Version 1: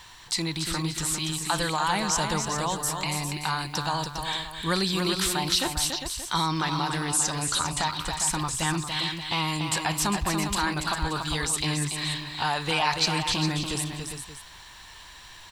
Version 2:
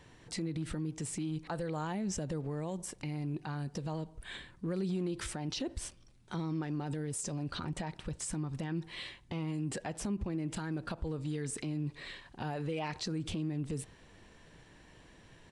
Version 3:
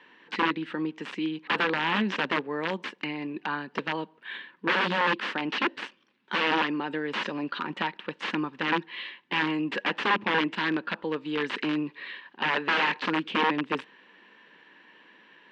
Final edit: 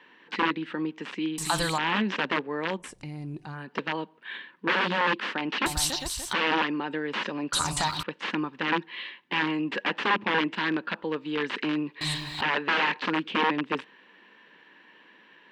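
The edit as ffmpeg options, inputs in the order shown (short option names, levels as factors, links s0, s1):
-filter_complex "[0:a]asplit=4[s0][s1][s2][s3];[2:a]asplit=6[s4][s5][s6][s7][s8][s9];[s4]atrim=end=1.382[s10];[s0]atrim=start=1.378:end=1.782[s11];[s5]atrim=start=1.778:end=2.92[s12];[1:a]atrim=start=2.76:end=3.68[s13];[s6]atrim=start=3.52:end=5.662[s14];[s1]atrim=start=5.658:end=6.332[s15];[s7]atrim=start=6.328:end=7.532[s16];[s2]atrim=start=7.528:end=8.032[s17];[s8]atrim=start=8.028:end=12.012[s18];[s3]atrim=start=12.008:end=12.412[s19];[s9]atrim=start=12.408[s20];[s10][s11]acrossfade=d=0.004:c1=hsin:c2=hsin[s21];[s21][s12]acrossfade=d=0.004:c1=hsin:c2=hsin[s22];[s22][s13]acrossfade=d=0.16:c1=tri:c2=tri[s23];[s23][s14]acrossfade=d=0.16:c1=tri:c2=tri[s24];[s24][s15]acrossfade=d=0.004:c1=hsin:c2=hsin[s25];[s25][s16]acrossfade=d=0.004:c1=hsin:c2=hsin[s26];[s26][s17]acrossfade=d=0.004:c1=hsin:c2=hsin[s27];[s27][s18]acrossfade=d=0.004:c1=hsin:c2=hsin[s28];[s28][s19]acrossfade=d=0.004:c1=hsin:c2=hsin[s29];[s29][s20]acrossfade=d=0.004:c1=hsin:c2=hsin"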